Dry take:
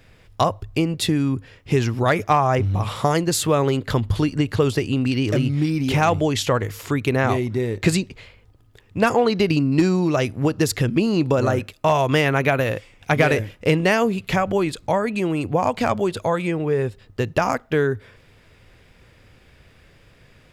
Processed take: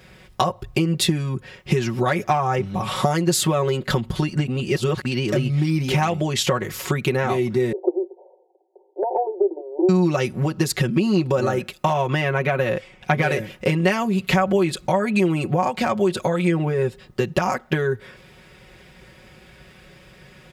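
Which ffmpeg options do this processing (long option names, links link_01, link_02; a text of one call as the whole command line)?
ffmpeg -i in.wav -filter_complex "[0:a]asettb=1/sr,asplit=3[link_01][link_02][link_03];[link_01]atrim=end=7.724[link_04];[link_02]atrim=start=7.72:end=9.89,asetpts=PTS-STARTPTS,afade=type=in:duration=0.004:curve=qsin,afade=type=out:start_time=2.166:duration=0.004:curve=qsin,asuperpass=centerf=560:order=20:qfactor=1[link_05];[link_03]atrim=start=9.886[link_06];[link_04][link_05]acrossfade=duration=0.004:curve1=hsin:curve2=qsin[link_07];[link_07][link_06]acrossfade=duration=0.004:curve1=qsin:curve2=hsin,asettb=1/sr,asplit=3[link_08][link_09][link_10];[link_08]atrim=end=11.934[link_11];[link_09]atrim=start=11.93:end=13.22,asetpts=PTS-STARTPTS,afade=type=in:duration=0.004:curve=qsin,afade=type=out:start_time=1.286:duration=0.004:curve=qsin,highshelf=frequency=4700:gain=-9.5[link_12];[link_10]atrim=start=13.216[link_13];[link_11][link_12]acrossfade=duration=0.004:curve1=hsin:curve2=qsin[link_14];[link_14][link_13]acrossfade=duration=0.004:curve1=qsin:curve2=hsin,asplit=3[link_15][link_16][link_17];[link_15]atrim=end=4.482[link_18];[link_16]atrim=start=4.478:end=5.052,asetpts=PTS-STARTPTS,areverse[link_19];[link_17]atrim=start=5.048[link_20];[link_18][link_19]acrossfade=duration=0.004:curve1=hsin:curve2=hsin[link_21];[link_21][link_20]acrossfade=duration=0.004:curve1=hsin:curve2=hsin,acompressor=threshold=-23dB:ratio=6,highpass=50,aecho=1:1:5.4:0.86,volume=4dB" out.wav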